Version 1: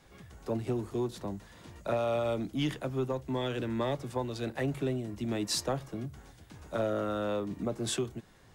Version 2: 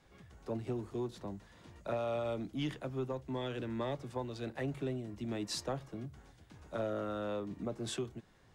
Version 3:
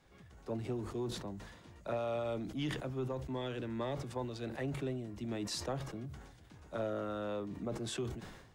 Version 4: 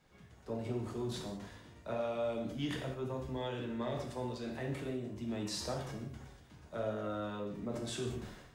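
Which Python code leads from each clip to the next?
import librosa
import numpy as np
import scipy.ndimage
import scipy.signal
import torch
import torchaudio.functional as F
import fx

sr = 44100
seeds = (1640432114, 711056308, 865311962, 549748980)

y1 = fx.high_shelf(x, sr, hz=10000.0, db=-10.5)
y1 = y1 * 10.0 ** (-5.5 / 20.0)
y2 = fx.sustainer(y1, sr, db_per_s=55.0)
y2 = y2 * 10.0 ** (-1.0 / 20.0)
y3 = fx.rev_gated(y2, sr, seeds[0], gate_ms=230, shape='falling', drr_db=0.0)
y3 = y3 * 10.0 ** (-3.0 / 20.0)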